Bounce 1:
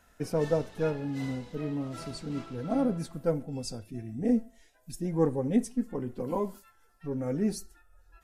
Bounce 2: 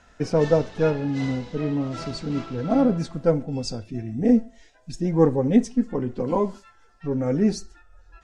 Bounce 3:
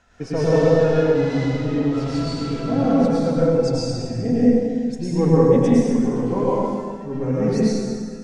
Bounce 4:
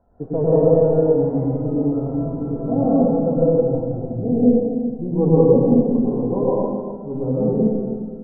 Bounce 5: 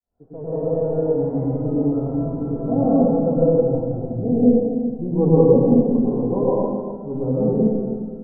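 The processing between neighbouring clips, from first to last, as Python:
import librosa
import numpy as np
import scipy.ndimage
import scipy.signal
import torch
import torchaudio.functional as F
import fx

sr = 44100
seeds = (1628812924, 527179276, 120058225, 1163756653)

y1 = scipy.signal.sosfilt(scipy.signal.butter(4, 6800.0, 'lowpass', fs=sr, output='sos'), x)
y1 = y1 * librosa.db_to_amplitude(8.0)
y2 = fx.rev_plate(y1, sr, seeds[0], rt60_s=1.9, hf_ratio=0.85, predelay_ms=90, drr_db=-8.5)
y2 = y2 * librosa.db_to_amplitude(-4.5)
y3 = scipy.signal.sosfilt(scipy.signal.cheby2(4, 60, 2700.0, 'lowpass', fs=sr, output='sos'), y2)
y3 = fx.low_shelf(y3, sr, hz=440.0, db=-4.0)
y3 = y3 * librosa.db_to_amplitude(3.5)
y4 = fx.fade_in_head(y3, sr, length_s=1.71)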